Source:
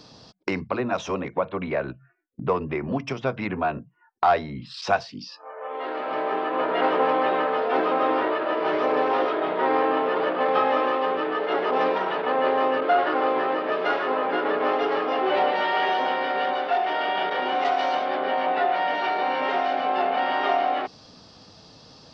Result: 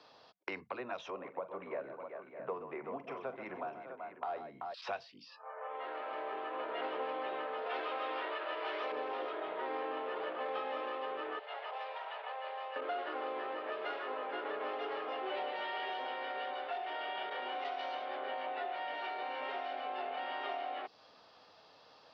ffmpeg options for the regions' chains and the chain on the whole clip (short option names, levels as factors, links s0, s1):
-filter_complex "[0:a]asettb=1/sr,asplit=3[s0][s1][s2];[s0]atrim=end=1.104[s3];[s1]atrim=start=1.1:end=4.74,asetpts=PTS-STARTPTS,afade=t=in:d=0.004:c=qsin,afade=t=out:st=3.636:d=0.004:c=qsin,highpass=130,equalizer=f=4300:t=o:w=2.8:g=-12.5,aecho=1:1:43|129|382|600|648:0.211|0.251|0.299|0.188|0.224,atrim=end_sample=160524[s4];[s2]atrim=start=4.736[s5];[s3][s4]acrossfade=d=0.004:c1=hsin:c2=qsin[s6];[s6][s5]acrossfade=d=0.004:c1=qsin:c2=hsin,asettb=1/sr,asplit=3[s7][s8][s9];[s7]atrim=end=7.664[s10];[s8]atrim=start=7.66:end=8.92,asetpts=PTS-STARTPTS,afade=t=in:d=0.004:c=qsin,afade=t=out:st=1.256:d=0.004:c=qsin,highpass=f=950:p=1,acontrast=69[s11];[s9]atrim=start=8.916[s12];[s10][s11]acrossfade=d=0.004:c1=hsin:c2=qsin[s13];[s13][s12]acrossfade=d=0.004:c1=qsin:c2=hsin,asettb=1/sr,asplit=3[s14][s15][s16];[s14]atrim=end=11.394[s17];[s15]atrim=start=11.39:end=12.76,asetpts=PTS-STARTPTS,afade=t=in:d=0.004:c=qsin,afade=t=out:st=1.366:d=0.004:c=qsin,highpass=f=660:w=0.5412,highpass=f=660:w=1.3066,equalizer=f=1300:w=0.86:g=-10,bandreject=f=5600:w=16[s18];[s16]atrim=start=12.756[s19];[s17][s18]acrossfade=d=0.004:c1=hsin:c2=qsin[s20];[s20][s19]acrossfade=d=0.004:c1=qsin:c2=hsin,acrossover=split=460 3600:gain=0.0891 1 0.0794[s21][s22][s23];[s21][s22][s23]amix=inputs=3:normalize=0,acrossover=split=400|3000[s24][s25][s26];[s25]acompressor=threshold=0.0178:ratio=6[s27];[s24][s27][s26]amix=inputs=3:normalize=0,volume=0.531"